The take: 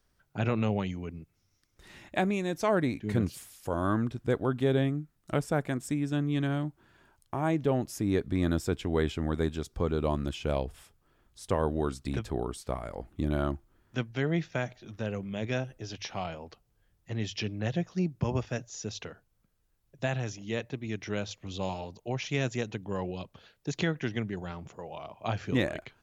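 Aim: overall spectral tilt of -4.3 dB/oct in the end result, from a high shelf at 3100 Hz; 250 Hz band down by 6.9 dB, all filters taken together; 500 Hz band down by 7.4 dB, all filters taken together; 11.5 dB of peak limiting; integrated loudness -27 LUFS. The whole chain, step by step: bell 250 Hz -7.5 dB; bell 500 Hz -7.5 dB; high shelf 3100 Hz +7.5 dB; gain +10.5 dB; limiter -13.5 dBFS

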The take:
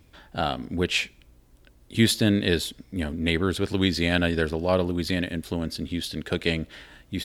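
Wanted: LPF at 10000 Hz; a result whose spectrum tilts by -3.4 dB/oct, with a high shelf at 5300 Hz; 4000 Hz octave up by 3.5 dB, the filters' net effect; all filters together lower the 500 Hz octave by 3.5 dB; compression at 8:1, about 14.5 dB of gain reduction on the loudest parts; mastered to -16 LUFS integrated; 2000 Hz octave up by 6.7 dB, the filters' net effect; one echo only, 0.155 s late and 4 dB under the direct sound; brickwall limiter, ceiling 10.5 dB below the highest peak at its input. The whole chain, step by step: LPF 10000 Hz; bell 500 Hz -5 dB; bell 2000 Hz +8.5 dB; bell 4000 Hz +3.5 dB; high shelf 5300 Hz -5.5 dB; compressor 8:1, threshold -30 dBFS; limiter -25 dBFS; echo 0.155 s -4 dB; gain +20 dB

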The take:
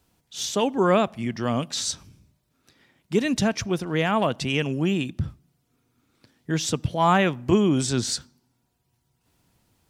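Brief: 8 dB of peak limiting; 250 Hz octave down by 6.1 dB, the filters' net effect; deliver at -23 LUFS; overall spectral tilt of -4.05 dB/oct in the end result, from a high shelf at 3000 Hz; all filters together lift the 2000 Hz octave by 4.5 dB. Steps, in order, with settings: bell 250 Hz -9 dB; bell 2000 Hz +7.5 dB; high shelf 3000 Hz -4 dB; gain +4.5 dB; limiter -10 dBFS

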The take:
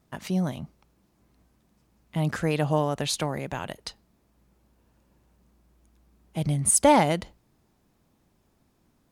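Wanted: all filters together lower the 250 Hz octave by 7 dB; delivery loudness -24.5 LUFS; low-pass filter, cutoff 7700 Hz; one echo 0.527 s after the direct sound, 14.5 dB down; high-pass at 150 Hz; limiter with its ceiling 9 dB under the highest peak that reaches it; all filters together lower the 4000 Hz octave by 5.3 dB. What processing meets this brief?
HPF 150 Hz; LPF 7700 Hz; bell 250 Hz -9 dB; bell 4000 Hz -6.5 dB; limiter -18 dBFS; echo 0.527 s -14.5 dB; gain +8 dB

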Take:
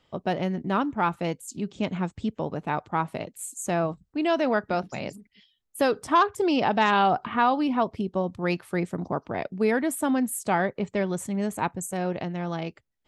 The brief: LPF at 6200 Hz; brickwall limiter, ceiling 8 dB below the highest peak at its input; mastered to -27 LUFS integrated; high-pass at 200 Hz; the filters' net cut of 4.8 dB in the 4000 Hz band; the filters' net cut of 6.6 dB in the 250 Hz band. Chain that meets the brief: HPF 200 Hz; LPF 6200 Hz; bell 250 Hz -6.5 dB; bell 4000 Hz -6.5 dB; gain +4.5 dB; limiter -13 dBFS

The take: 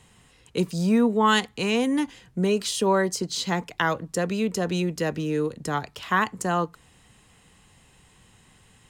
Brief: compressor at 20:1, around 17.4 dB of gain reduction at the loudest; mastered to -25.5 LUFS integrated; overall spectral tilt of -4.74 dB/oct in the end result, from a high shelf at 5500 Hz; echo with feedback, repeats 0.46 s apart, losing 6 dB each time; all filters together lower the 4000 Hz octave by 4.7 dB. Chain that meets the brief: bell 4000 Hz -3.5 dB; high shelf 5500 Hz -7.5 dB; compressor 20:1, threshold -33 dBFS; feedback echo 0.46 s, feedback 50%, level -6 dB; gain +12 dB

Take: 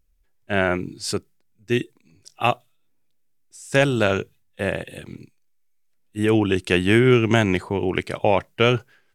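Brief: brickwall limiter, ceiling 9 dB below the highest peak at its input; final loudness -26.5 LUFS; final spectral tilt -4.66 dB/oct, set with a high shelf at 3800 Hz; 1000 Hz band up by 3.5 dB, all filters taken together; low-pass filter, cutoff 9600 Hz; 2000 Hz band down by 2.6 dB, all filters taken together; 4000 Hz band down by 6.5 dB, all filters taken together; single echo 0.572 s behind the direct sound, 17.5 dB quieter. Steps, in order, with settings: LPF 9600 Hz; bell 1000 Hz +6.5 dB; bell 2000 Hz -3 dB; high shelf 3800 Hz -7 dB; bell 4000 Hz -4.5 dB; limiter -12 dBFS; echo 0.572 s -17.5 dB; gain -1 dB

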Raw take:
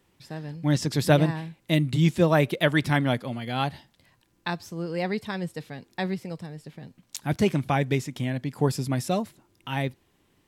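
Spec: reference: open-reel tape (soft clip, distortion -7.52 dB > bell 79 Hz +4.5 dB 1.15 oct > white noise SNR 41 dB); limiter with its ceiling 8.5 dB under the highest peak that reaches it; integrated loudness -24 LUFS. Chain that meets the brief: limiter -14.5 dBFS; soft clip -28 dBFS; bell 79 Hz +4.5 dB 1.15 oct; white noise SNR 41 dB; gain +9.5 dB

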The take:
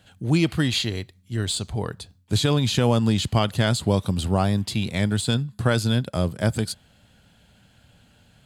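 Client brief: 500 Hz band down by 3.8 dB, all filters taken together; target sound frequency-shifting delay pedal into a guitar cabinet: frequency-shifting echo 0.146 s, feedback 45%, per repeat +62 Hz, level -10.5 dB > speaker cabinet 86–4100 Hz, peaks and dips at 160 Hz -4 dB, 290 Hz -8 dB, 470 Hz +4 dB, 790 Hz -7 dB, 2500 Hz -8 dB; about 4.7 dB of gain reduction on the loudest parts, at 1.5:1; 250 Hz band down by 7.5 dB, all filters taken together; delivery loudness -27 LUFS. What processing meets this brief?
bell 250 Hz -5.5 dB; bell 500 Hz -4 dB; compressor 1.5:1, threshold -31 dBFS; frequency-shifting echo 0.146 s, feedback 45%, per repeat +62 Hz, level -10.5 dB; speaker cabinet 86–4100 Hz, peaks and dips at 160 Hz -4 dB, 290 Hz -8 dB, 470 Hz +4 dB, 790 Hz -7 dB, 2500 Hz -8 dB; gain +4.5 dB

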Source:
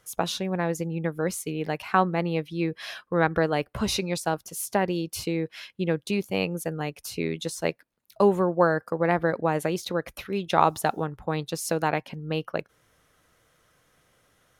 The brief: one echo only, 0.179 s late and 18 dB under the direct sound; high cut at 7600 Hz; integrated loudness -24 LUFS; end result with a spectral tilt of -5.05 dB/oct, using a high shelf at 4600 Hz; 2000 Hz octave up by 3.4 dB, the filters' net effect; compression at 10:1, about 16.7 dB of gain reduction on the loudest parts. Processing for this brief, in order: LPF 7600 Hz; bell 2000 Hz +5.5 dB; high shelf 4600 Hz -6 dB; compressor 10:1, threshold -30 dBFS; echo 0.179 s -18 dB; gain +12 dB

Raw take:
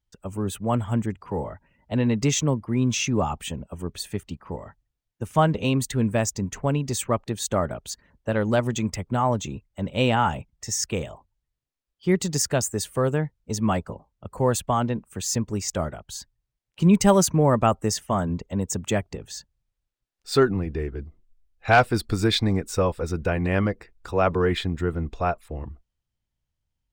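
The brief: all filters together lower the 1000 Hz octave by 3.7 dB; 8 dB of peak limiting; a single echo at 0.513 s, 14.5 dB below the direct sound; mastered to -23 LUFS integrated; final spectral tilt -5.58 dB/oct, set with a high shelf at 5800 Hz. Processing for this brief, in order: bell 1000 Hz -5 dB; high shelf 5800 Hz -8 dB; limiter -14.5 dBFS; echo 0.513 s -14.5 dB; gain +4.5 dB

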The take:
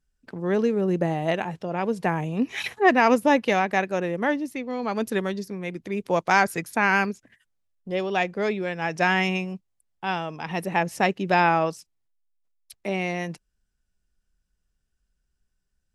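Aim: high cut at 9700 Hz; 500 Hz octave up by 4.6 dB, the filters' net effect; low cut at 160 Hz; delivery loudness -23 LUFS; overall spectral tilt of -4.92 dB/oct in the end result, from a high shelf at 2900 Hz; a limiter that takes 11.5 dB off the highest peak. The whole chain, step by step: HPF 160 Hz; LPF 9700 Hz; bell 500 Hz +6 dB; high shelf 2900 Hz -3.5 dB; gain +4 dB; limiter -11.5 dBFS

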